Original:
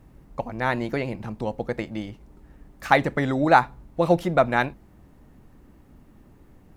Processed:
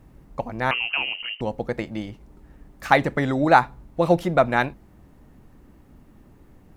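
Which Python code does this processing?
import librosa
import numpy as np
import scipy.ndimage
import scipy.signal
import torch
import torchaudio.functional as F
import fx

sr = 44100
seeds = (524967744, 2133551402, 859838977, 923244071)

y = fx.freq_invert(x, sr, carrier_hz=3000, at=(0.71, 1.41))
y = F.gain(torch.from_numpy(y), 1.0).numpy()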